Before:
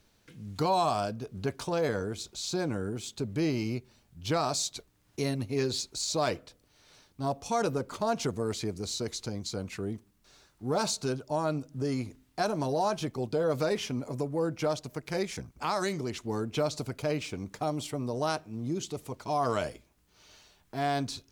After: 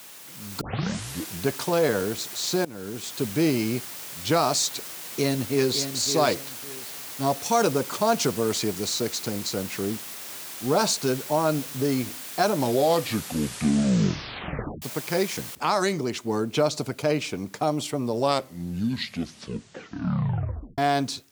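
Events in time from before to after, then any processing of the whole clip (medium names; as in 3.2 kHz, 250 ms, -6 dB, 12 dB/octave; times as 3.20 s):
0.61 s: tape start 0.84 s
2.65–3.23 s: fade in, from -20 dB
4.73–5.78 s: echo throw 560 ms, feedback 25%, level -9 dB
7.21–8.89 s: treble shelf 4.1 kHz +5 dB
12.45 s: tape stop 2.37 s
15.55 s: noise floor step -45 dB -64 dB
18.00 s: tape stop 2.78 s
whole clip: high-pass 140 Hz 12 dB/octave; level rider gain up to 7 dB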